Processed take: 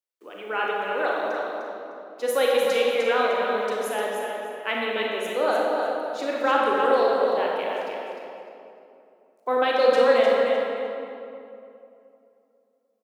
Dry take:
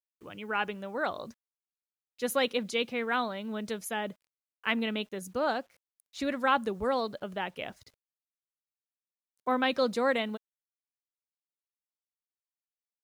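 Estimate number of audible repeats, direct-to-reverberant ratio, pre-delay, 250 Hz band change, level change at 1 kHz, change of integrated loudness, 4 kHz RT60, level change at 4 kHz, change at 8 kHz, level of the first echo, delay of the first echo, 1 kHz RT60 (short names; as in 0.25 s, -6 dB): 1, -4.5 dB, 27 ms, +0.5 dB, +8.0 dB, +8.0 dB, 1.7 s, +4.5 dB, +3.5 dB, -5.5 dB, 0.303 s, 2.6 s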